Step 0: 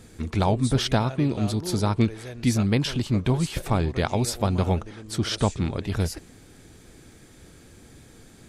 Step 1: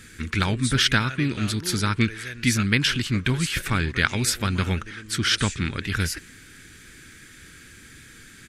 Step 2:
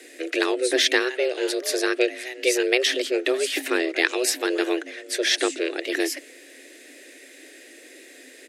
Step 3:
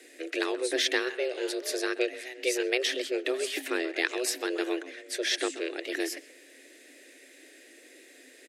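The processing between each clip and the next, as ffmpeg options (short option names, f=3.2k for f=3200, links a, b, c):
-af "firequalizer=gain_entry='entry(290,0);entry(700,-12);entry(1500,14);entry(4000,7)':delay=0.05:min_phase=1,volume=-1dB"
-af "afreqshift=250"
-filter_complex "[0:a]asplit=2[a][b];[b]adelay=130,highpass=300,lowpass=3.4k,asoftclip=type=hard:threshold=-13dB,volume=-15dB[c];[a][c]amix=inputs=2:normalize=0,volume=-7dB"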